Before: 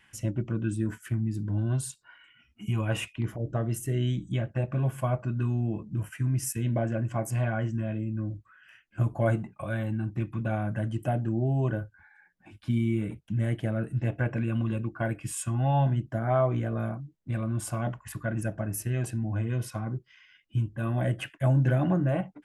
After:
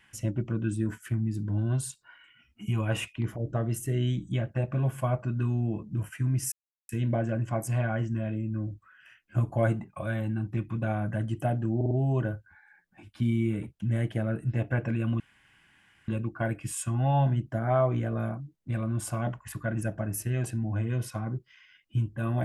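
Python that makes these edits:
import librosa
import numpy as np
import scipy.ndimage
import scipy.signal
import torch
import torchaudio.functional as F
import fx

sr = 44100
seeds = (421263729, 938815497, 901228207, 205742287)

y = fx.edit(x, sr, fx.insert_silence(at_s=6.52, length_s=0.37),
    fx.stutter(start_s=11.39, slice_s=0.05, count=4),
    fx.insert_room_tone(at_s=14.68, length_s=0.88), tone=tone)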